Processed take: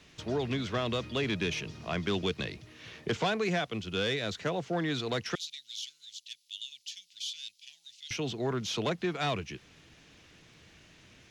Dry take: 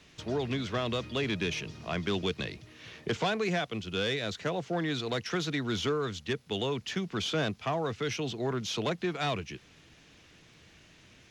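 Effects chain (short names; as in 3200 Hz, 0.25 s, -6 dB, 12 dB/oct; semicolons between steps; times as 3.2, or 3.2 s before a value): 5.35–8.11 inverse Chebyshev high-pass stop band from 1300 Hz, stop band 50 dB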